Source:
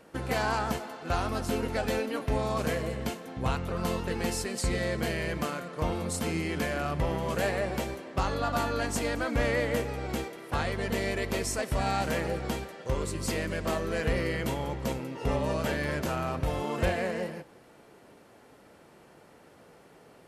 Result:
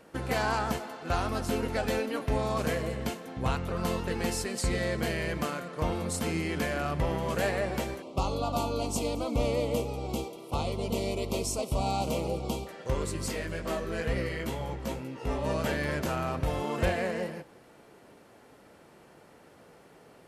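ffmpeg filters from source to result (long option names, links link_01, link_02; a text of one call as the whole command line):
ffmpeg -i in.wav -filter_complex "[0:a]asettb=1/sr,asplit=3[link_01][link_02][link_03];[link_01]atrim=end=8.024[link_04];[link_02]atrim=start=8.02:end=12.67,asetpts=PTS-STARTPTS,afade=type=in:duration=0.004:curve=qsin,afade=type=out:start_time=4.646:duration=0.004:curve=qsin,asuperstop=centerf=1700:order=4:qfactor=1.2[link_05];[link_03]atrim=start=12.666[link_06];[link_04][link_05]acrossfade=duration=0.004:curve1=hsin:curve2=qsin[link_07];[link_07][link_06]acrossfade=duration=0.004:curve1=qsin:curve2=hsin,asettb=1/sr,asplit=3[link_08][link_09][link_10];[link_08]atrim=end=13.284[link_11];[link_09]atrim=start=13.28:end=15.45,asetpts=PTS-STARTPTS,afade=type=in:duration=0.004:curve=qsin,afade=type=out:start_time=2.166:duration=0.004:curve=qsin,flanger=delay=15.5:depth=3:speed=2.2[link_12];[link_10]atrim=start=15.446[link_13];[link_11][link_12]acrossfade=duration=0.004:curve1=hsin:curve2=qsin[link_14];[link_14][link_13]acrossfade=duration=0.004:curve1=qsin:curve2=hsin" out.wav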